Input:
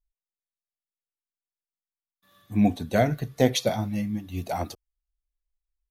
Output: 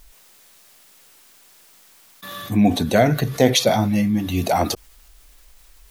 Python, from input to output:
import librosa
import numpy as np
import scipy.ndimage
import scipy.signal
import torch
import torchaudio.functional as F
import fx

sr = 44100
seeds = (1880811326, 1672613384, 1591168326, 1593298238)

y = fx.low_shelf(x, sr, hz=87.0, db=-10.5)
y = fx.env_flatten(y, sr, amount_pct=50)
y = y * 10.0 ** (5.0 / 20.0)